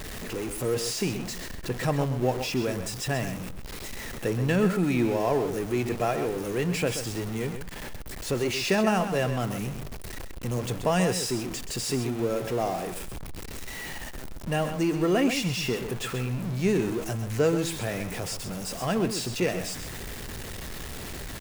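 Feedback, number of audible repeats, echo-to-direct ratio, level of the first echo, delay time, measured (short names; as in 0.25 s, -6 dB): no steady repeat, 1, -9.5 dB, -9.5 dB, 0.13 s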